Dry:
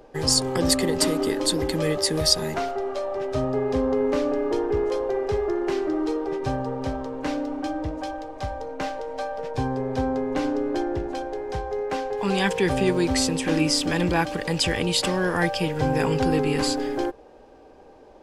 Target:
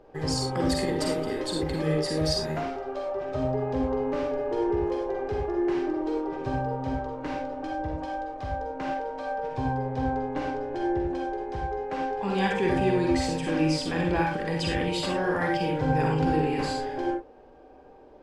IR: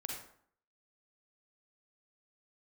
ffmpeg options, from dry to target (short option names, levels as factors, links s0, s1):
-filter_complex "[0:a]lowpass=f=2300:p=1[s0];[1:a]atrim=start_sample=2205,afade=t=out:st=0.17:d=0.01,atrim=end_sample=7938[s1];[s0][s1]afir=irnorm=-1:irlink=0,volume=0.891"